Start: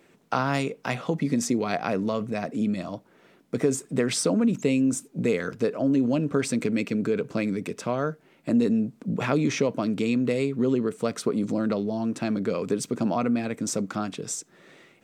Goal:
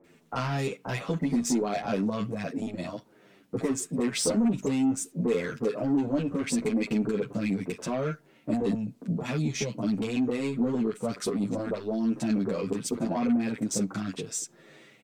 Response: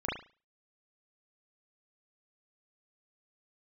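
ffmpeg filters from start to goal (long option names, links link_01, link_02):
-filter_complex "[0:a]asettb=1/sr,asplit=3[link_01][link_02][link_03];[link_01]atrim=end=8.734[link_04];[link_02]atrim=start=8.73:end=9.83,asetpts=PTS-STARTPTS,afade=type=in:duration=0.004:curve=qsin,afade=type=out:start_time=1.096:duration=0.004:curve=qsin,acrossover=split=210|3000[link_05][link_06][link_07];[link_06]acompressor=threshold=-32dB:ratio=6[link_08];[link_05][link_08][link_07]amix=inputs=3:normalize=0[link_09];[link_03]atrim=start=9.826[link_10];[link_04][link_09]acrossfade=duration=0.004:curve1=hsin:curve2=qsin[link_11];[link_11][link_10]acrossfade=duration=0.004:curve1=qsin:curve2=hsin,asoftclip=type=tanh:threshold=-20.5dB,acrossover=split=1200[link_12][link_13];[link_13]adelay=40[link_14];[link_12][link_14]amix=inputs=2:normalize=0,asplit=2[link_15][link_16];[link_16]adelay=8.7,afreqshift=-0.77[link_17];[link_15][link_17]amix=inputs=2:normalize=1,volume=3dB"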